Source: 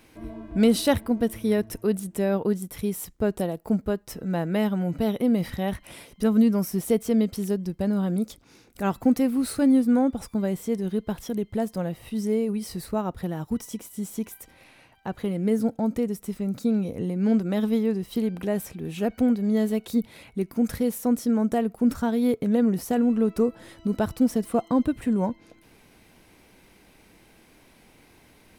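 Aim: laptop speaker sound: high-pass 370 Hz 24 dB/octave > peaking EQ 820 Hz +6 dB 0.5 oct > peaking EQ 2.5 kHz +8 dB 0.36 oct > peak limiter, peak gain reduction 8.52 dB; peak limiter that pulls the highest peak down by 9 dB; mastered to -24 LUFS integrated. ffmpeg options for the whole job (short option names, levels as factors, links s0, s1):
-af "alimiter=limit=0.168:level=0:latency=1,highpass=f=370:w=0.5412,highpass=f=370:w=1.3066,equalizer=f=820:t=o:w=0.5:g=6,equalizer=f=2500:t=o:w=0.36:g=8,volume=3.35,alimiter=limit=0.251:level=0:latency=1"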